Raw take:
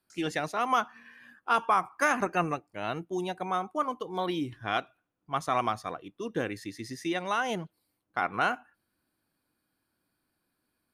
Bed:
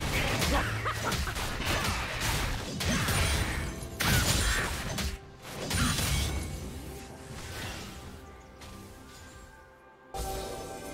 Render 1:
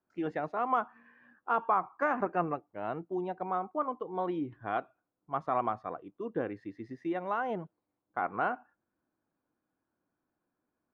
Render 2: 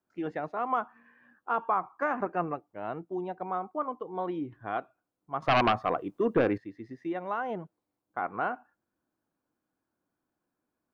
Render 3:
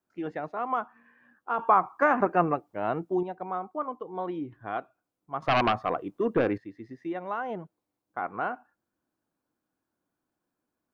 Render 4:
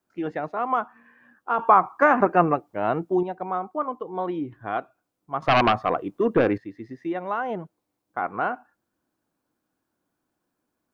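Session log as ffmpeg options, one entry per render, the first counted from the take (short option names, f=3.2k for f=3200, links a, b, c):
-af "lowpass=1.1k,lowshelf=f=170:g=-9"
-filter_complex "[0:a]asettb=1/sr,asplit=3[a][b][c];[a]atrim=end=5.424[d];[b]atrim=start=5.42:end=6.58,asetpts=PTS-STARTPTS,afade=t=in:d=0.004:c=qsin,afade=t=out:st=1.156:d=0.004:c=qsin,aeval=exprs='0.133*sin(PI/2*2.51*val(0)/0.133)':c=same[e];[c]atrim=start=6.576[f];[d][e]acrossfade=d=0.004:c1=hsin:c2=qsin[g];[g][f]acrossfade=d=0.004:c1=qsin:c2=hsin"
-filter_complex "[0:a]asplit=3[a][b][c];[a]atrim=end=1.592[d];[b]atrim=start=1.588:end=3.232,asetpts=PTS-STARTPTS,volume=7dB[e];[c]atrim=start=3.228[f];[d][e]acrossfade=d=0.004:c1=hsin:c2=hsin[g];[g][f]acrossfade=d=0.004:c1=hsin:c2=hsin"
-af "volume=5dB"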